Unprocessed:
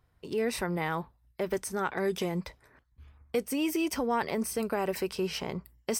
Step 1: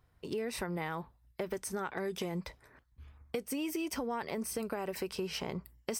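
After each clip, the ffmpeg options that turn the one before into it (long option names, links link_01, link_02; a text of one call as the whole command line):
ffmpeg -i in.wav -af "acompressor=threshold=-33dB:ratio=6" out.wav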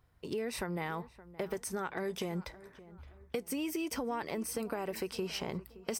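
ffmpeg -i in.wav -filter_complex "[0:a]asplit=2[link_01][link_02];[link_02]adelay=570,lowpass=frequency=2100:poles=1,volume=-17.5dB,asplit=2[link_03][link_04];[link_04]adelay=570,lowpass=frequency=2100:poles=1,volume=0.42,asplit=2[link_05][link_06];[link_06]adelay=570,lowpass=frequency=2100:poles=1,volume=0.42[link_07];[link_01][link_03][link_05][link_07]amix=inputs=4:normalize=0" out.wav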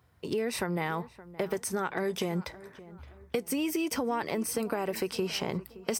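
ffmpeg -i in.wav -af "highpass=frequency=70:width=0.5412,highpass=frequency=70:width=1.3066,volume=5.5dB" out.wav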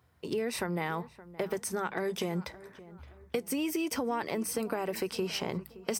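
ffmpeg -i in.wav -af "bandreject=frequency=50:width_type=h:width=6,bandreject=frequency=100:width_type=h:width=6,bandreject=frequency=150:width_type=h:width=6,bandreject=frequency=200:width_type=h:width=6,volume=-1.5dB" out.wav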